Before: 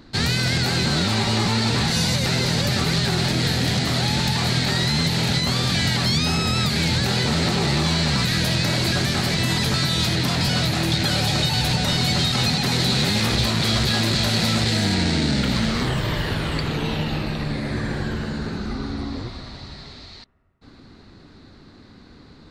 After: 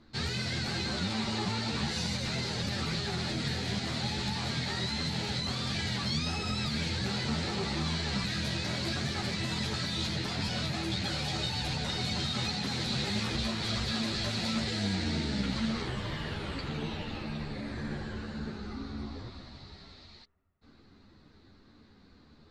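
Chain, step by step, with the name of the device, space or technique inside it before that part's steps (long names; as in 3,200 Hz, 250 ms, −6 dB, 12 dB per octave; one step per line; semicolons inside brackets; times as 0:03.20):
string-machine ensemble chorus (string-ensemble chorus; low-pass filter 7,800 Hz 12 dB per octave)
level −8.5 dB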